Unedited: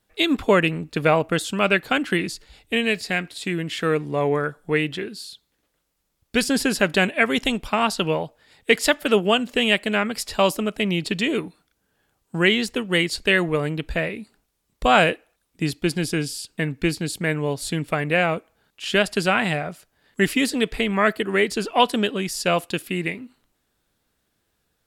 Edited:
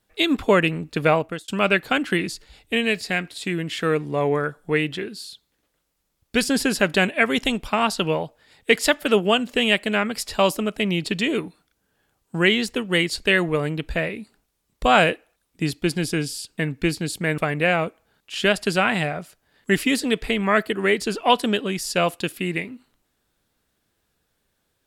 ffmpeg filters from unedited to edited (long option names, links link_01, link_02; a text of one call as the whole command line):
ffmpeg -i in.wav -filter_complex "[0:a]asplit=3[link_01][link_02][link_03];[link_01]atrim=end=1.48,asetpts=PTS-STARTPTS,afade=type=out:start_time=1.12:duration=0.36[link_04];[link_02]atrim=start=1.48:end=17.382,asetpts=PTS-STARTPTS,afade=type=in:duration=0.004:curve=hsin[link_05];[link_03]atrim=start=17.878[link_06];[link_04][link_05]concat=n=2:v=0:a=1[link_07];[link_07][link_06]acrossfade=duration=0.004:curve1=hsin:curve2=hsin" out.wav